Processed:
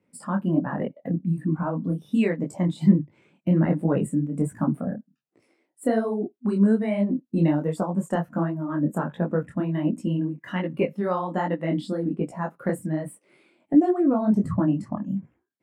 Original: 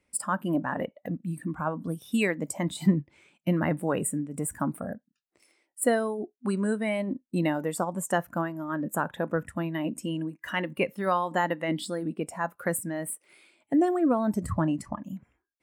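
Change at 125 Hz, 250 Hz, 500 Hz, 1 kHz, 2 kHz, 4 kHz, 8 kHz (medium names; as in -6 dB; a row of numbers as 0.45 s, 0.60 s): +7.0 dB, +6.0 dB, +2.5 dB, -1.0 dB, -4.5 dB, no reading, under -10 dB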